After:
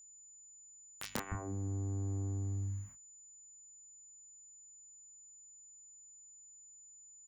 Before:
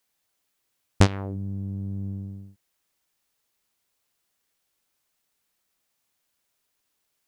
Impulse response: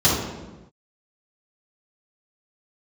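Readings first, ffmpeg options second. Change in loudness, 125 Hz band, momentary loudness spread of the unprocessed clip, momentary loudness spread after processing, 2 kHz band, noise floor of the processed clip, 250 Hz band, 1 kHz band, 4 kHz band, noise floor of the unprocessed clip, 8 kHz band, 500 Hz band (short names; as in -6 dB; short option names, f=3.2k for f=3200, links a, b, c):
-12.0 dB, -9.0 dB, 15 LU, 17 LU, -12.0 dB, -58 dBFS, -13.0 dB, -12.5 dB, under -10 dB, -77 dBFS, -0.5 dB, -14.0 dB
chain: -filter_complex "[0:a]aemphasis=mode=reproduction:type=cd,acrossover=split=210|4100[a][b][c];[b]adelay=150[d];[a]adelay=310[e];[e][d][c]amix=inputs=3:normalize=0,acrossover=split=170|1300[f][g][h];[f]acompressor=threshold=-37dB:ratio=4[i];[g]acompressor=threshold=-37dB:ratio=4[j];[h]acompressor=threshold=-35dB:ratio=4[k];[i][j][k]amix=inputs=3:normalize=0,equalizer=f=1k:t=o:w=1:g=9,equalizer=f=2k:t=o:w=1:g=6,equalizer=f=4k:t=o:w=1:g=-8,equalizer=f=8k:t=o:w=1:g=-9,acompressor=threshold=-41dB:ratio=12,aeval=exprs='val(0)+0.000398*(sin(2*PI*50*n/s)+sin(2*PI*2*50*n/s)/2+sin(2*PI*3*50*n/s)/3+sin(2*PI*4*50*n/s)/4+sin(2*PI*5*50*n/s)/5)':c=same,agate=range=-27dB:threshold=-59dB:ratio=16:detection=peak,aeval=exprs='(mod(33.5*val(0)+1,2)-1)/33.5':c=same,asplit=2[l][m];[m]adelay=28,volume=-3.5dB[n];[l][n]amix=inputs=2:normalize=0,aeval=exprs='val(0)+0.000891*sin(2*PI*7000*n/s)':c=same,volume=6dB"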